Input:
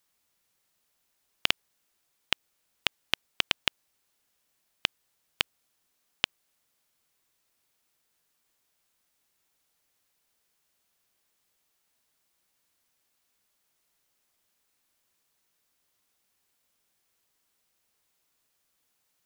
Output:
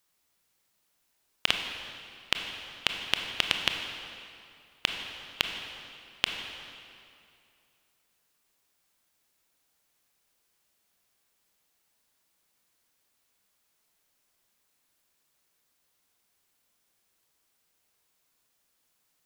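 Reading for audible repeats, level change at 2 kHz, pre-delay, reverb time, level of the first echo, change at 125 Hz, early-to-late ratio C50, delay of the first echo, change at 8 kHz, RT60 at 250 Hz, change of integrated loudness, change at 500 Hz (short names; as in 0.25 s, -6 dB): none, +1.5 dB, 23 ms, 2.5 s, none, +2.0 dB, 4.5 dB, none, +1.5 dB, 2.5 s, 0.0 dB, +1.5 dB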